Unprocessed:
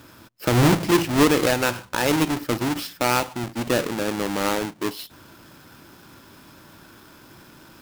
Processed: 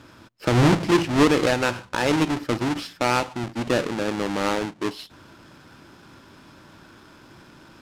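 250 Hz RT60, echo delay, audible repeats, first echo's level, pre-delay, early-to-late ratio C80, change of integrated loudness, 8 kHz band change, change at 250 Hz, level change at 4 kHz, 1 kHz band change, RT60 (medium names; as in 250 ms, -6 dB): no reverb, no echo, no echo, no echo, no reverb, no reverb, -0.5 dB, -5.5 dB, 0.0 dB, -1.5 dB, -0.5 dB, no reverb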